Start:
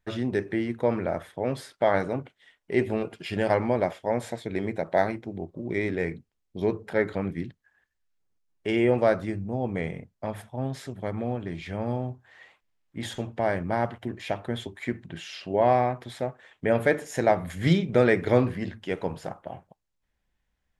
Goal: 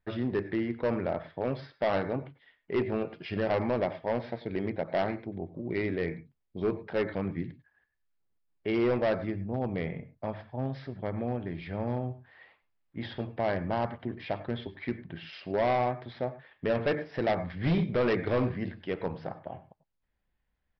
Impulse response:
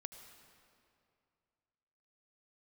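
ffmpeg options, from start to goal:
-filter_complex "[0:a]equalizer=frequency=4200:width_type=o:width=1.3:gain=-5[link_01];[1:a]atrim=start_sample=2205,atrim=end_sample=3969,asetrate=35280,aresample=44100[link_02];[link_01][link_02]afir=irnorm=-1:irlink=0,aresample=11025,asoftclip=type=hard:threshold=-23.5dB,aresample=44100,volume=1.5dB"

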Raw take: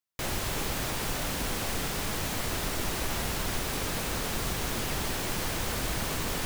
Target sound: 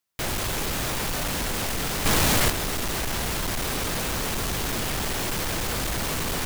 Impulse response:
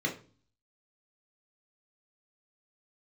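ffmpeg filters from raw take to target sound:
-filter_complex "[0:a]asoftclip=type=hard:threshold=-33dB,asettb=1/sr,asplit=3[link_01][link_02][link_03];[link_01]atrim=end=2.054[link_04];[link_02]atrim=start=2.05:end=2.5,asetpts=PTS-STARTPTS,afade=type=in:duration=0.004:curve=qsin,afade=type=out:start_time=0.446:duration=0.004:curve=qsin,acontrast=88[link_05];[link_03]atrim=start=2.496[link_06];[link_04][link_05]acrossfade=duration=0.004:curve1=hsin:curve2=qsin[link_07];[link_07][link_06]acrossfade=duration=0.004:curve1=qsin:curve2=hsin,volume=8dB"

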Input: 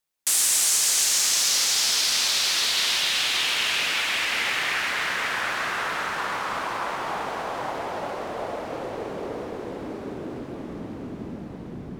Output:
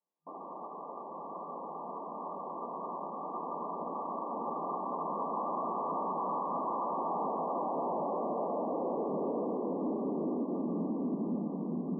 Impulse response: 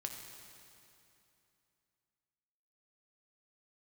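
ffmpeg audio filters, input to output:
-af "adynamicequalizer=threshold=0.00355:dfrequency=240:dqfactor=2.5:tfrequency=240:tqfactor=2.5:attack=5:release=100:ratio=0.375:range=2.5:mode=boostabove:tftype=bell,afftfilt=real='re*between(b*sr/4096,160,1200)':imag='im*between(b*sr/4096,160,1200)':win_size=4096:overlap=0.75,alimiter=level_in=2.5dB:limit=-24dB:level=0:latency=1:release=10,volume=-2.5dB"

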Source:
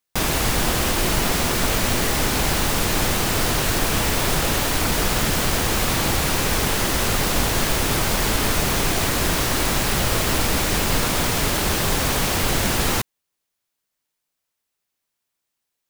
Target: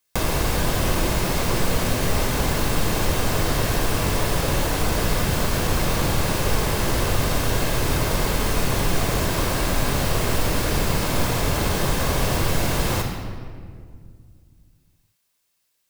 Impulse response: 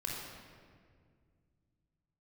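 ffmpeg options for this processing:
-filter_complex "[0:a]acrossover=split=1200|3600[link_01][link_02][link_03];[link_01]acompressor=threshold=-25dB:ratio=4[link_04];[link_02]acompressor=threshold=-43dB:ratio=4[link_05];[link_03]acompressor=threshold=-42dB:ratio=4[link_06];[link_04][link_05][link_06]amix=inputs=3:normalize=0,asplit=2[link_07][link_08];[1:a]atrim=start_sample=2205,highshelf=frequency=2100:gain=10[link_09];[link_08][link_09]afir=irnorm=-1:irlink=0,volume=-2.5dB[link_10];[link_07][link_10]amix=inputs=2:normalize=0"

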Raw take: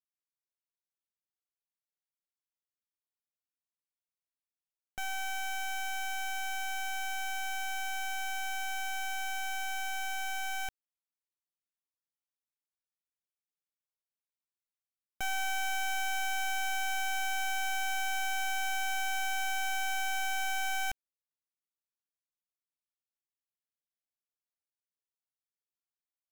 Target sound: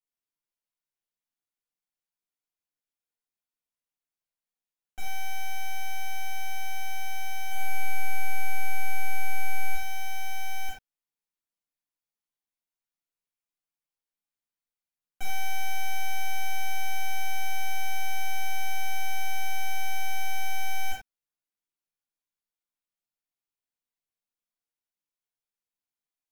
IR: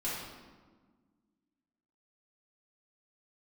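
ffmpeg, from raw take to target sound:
-filter_complex "[0:a]asettb=1/sr,asplit=3[link_01][link_02][link_03];[link_01]atrim=end=7.454[link_04];[link_02]atrim=start=7.45:end=9.75,asetpts=PTS-STARTPTS,afade=type=in:duration=0.004:curve=qsin,afade=type=out:start_time=2.296:duration=0.004:curve=qsin,aecho=1:1:60|135|228.8|345.9|492.4:0.631|0.398|0.251|0.158|0.1,atrim=end_sample=101430[link_05];[link_03]atrim=start=9.746[link_06];[link_04][link_05]acrossfade=duration=0.004:curve1=hsin:curve2=qsin[link_07];[link_07][link_06]acrossfade=duration=0.004:curve1=qsin:curve2=hsin[link_08];[1:a]atrim=start_sample=2205,atrim=end_sample=4410[link_09];[link_08][link_09]afir=irnorm=-1:irlink=0,volume=-2.5dB"

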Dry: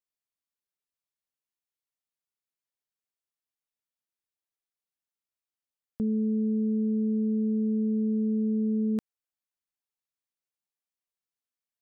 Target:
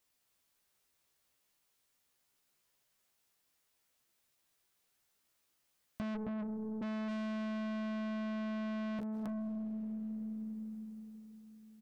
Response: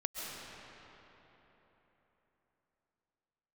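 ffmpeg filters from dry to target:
-filter_complex "[0:a]asplit=3[link_01][link_02][link_03];[link_01]afade=type=out:start_time=6.14:duration=0.02[link_04];[link_02]highpass=frequency=380:width=0.5412,highpass=frequency=380:width=1.3066,afade=type=in:start_time=6.14:duration=0.02,afade=type=out:start_time=6.81:duration=0.02[link_05];[link_03]afade=type=in:start_time=6.81:duration=0.02[link_06];[link_04][link_05][link_06]amix=inputs=3:normalize=0,asplit=2[link_07][link_08];[link_08]adelay=15,volume=-4dB[link_09];[link_07][link_09]amix=inputs=2:normalize=0,aecho=1:1:268:0.473,asplit=2[link_10][link_11];[1:a]atrim=start_sample=2205,adelay=27[link_12];[link_11][link_12]afir=irnorm=-1:irlink=0,volume=-15dB[link_13];[link_10][link_13]amix=inputs=2:normalize=0,aeval=exprs='(tanh(141*val(0)+0.05)-tanh(0.05))/141':channel_layout=same,acompressor=threshold=-52dB:ratio=5,volume=13dB"

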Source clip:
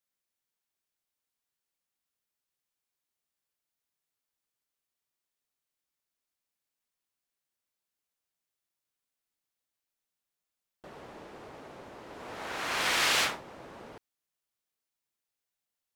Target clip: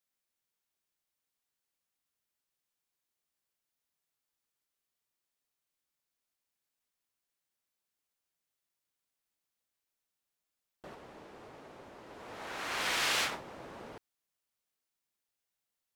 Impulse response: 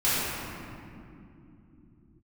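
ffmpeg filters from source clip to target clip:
-filter_complex "[0:a]asplit=3[link_01][link_02][link_03];[link_01]afade=type=out:start_time=10.94:duration=0.02[link_04];[link_02]flanger=delay=2.1:depth=8.5:regen=-75:speed=1.1:shape=triangular,afade=type=in:start_time=10.94:duration=0.02,afade=type=out:start_time=13.31:duration=0.02[link_05];[link_03]afade=type=in:start_time=13.31:duration=0.02[link_06];[link_04][link_05][link_06]amix=inputs=3:normalize=0"

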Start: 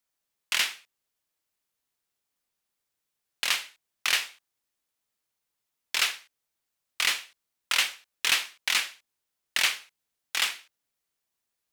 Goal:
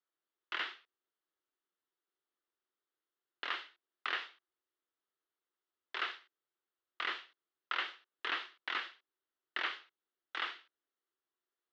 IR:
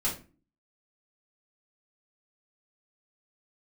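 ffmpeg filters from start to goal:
-filter_complex "[0:a]acrossover=split=2600[link_01][link_02];[link_02]acompressor=threshold=-32dB:ratio=4:attack=1:release=60[link_03];[link_01][link_03]amix=inputs=2:normalize=0,highpass=frequency=270:width=0.5412,highpass=frequency=270:width=1.3066,equalizer=frequency=360:width_type=q:width=4:gain=9,equalizer=frequency=600:width_type=q:width=4:gain=-3,equalizer=frequency=850:width_type=q:width=4:gain=-3,equalizer=frequency=1300:width_type=q:width=4:gain=4,equalizer=frequency=2400:width_type=q:width=4:gain=-10,lowpass=frequency=3500:width=0.5412,lowpass=frequency=3500:width=1.3066,volume=-5dB"

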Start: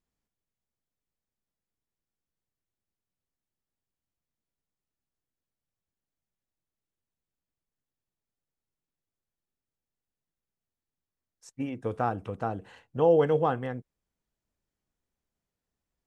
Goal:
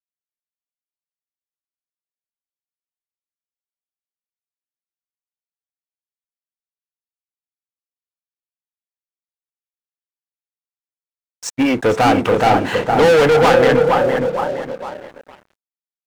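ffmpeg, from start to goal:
ffmpeg -i in.wav -filter_complex "[0:a]asplit=2[link_01][link_02];[link_02]asplit=3[link_03][link_04][link_05];[link_03]adelay=464,afreqshift=33,volume=-17dB[link_06];[link_04]adelay=928,afreqshift=66,volume=-27.2dB[link_07];[link_05]adelay=1392,afreqshift=99,volume=-37.3dB[link_08];[link_06][link_07][link_08]amix=inputs=3:normalize=0[link_09];[link_01][link_09]amix=inputs=2:normalize=0,asplit=2[link_10][link_11];[link_11]highpass=frequency=720:poles=1,volume=33dB,asoftclip=type=tanh:threshold=-11dB[link_12];[link_10][link_12]amix=inputs=2:normalize=0,lowpass=frequency=4500:poles=1,volume=-6dB,bandreject=frequency=1100:width=18,asplit=2[link_13][link_14];[link_14]adelay=462,lowpass=frequency=1300:poles=1,volume=-3.5dB,asplit=2[link_15][link_16];[link_16]adelay=462,lowpass=frequency=1300:poles=1,volume=0.32,asplit=2[link_17][link_18];[link_18]adelay=462,lowpass=frequency=1300:poles=1,volume=0.32,asplit=2[link_19][link_20];[link_20]adelay=462,lowpass=frequency=1300:poles=1,volume=0.32[link_21];[link_15][link_17][link_19][link_21]amix=inputs=4:normalize=0[link_22];[link_13][link_22]amix=inputs=2:normalize=0,aeval=exprs='sgn(val(0))*max(abs(val(0))-0.0106,0)':channel_layout=same,volume=6dB" out.wav

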